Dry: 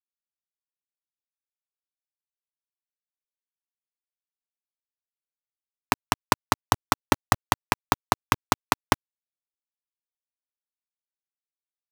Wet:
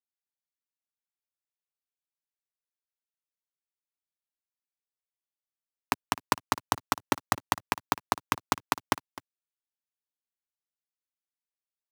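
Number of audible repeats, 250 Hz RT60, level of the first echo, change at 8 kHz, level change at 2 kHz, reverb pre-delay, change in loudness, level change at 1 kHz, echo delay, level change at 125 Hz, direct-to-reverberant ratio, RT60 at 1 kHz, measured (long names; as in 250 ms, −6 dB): 1, no reverb audible, −18.0 dB, −5.5 dB, −5.5 dB, no reverb audible, −5.5 dB, −5.5 dB, 257 ms, −9.5 dB, no reverb audible, no reverb audible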